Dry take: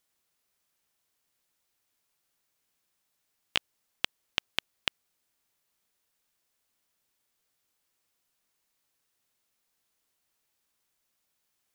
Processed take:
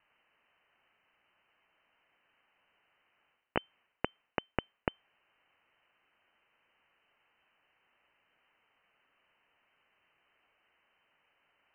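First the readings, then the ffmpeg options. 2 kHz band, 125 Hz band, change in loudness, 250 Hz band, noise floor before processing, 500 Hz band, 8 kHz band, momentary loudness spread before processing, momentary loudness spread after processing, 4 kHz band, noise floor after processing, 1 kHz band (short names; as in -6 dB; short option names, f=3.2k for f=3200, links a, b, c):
-6.0 dB, +8.0 dB, -6.0 dB, +9.5 dB, -79 dBFS, +9.5 dB, under -25 dB, 3 LU, 3 LU, -16.5 dB, -80 dBFS, +3.5 dB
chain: -af "areverse,acompressor=threshold=-36dB:ratio=6,areverse,lowpass=f=2.6k:t=q:w=0.5098,lowpass=f=2.6k:t=q:w=0.6013,lowpass=f=2.6k:t=q:w=0.9,lowpass=f=2.6k:t=q:w=2.563,afreqshift=-3100,volume=13dB"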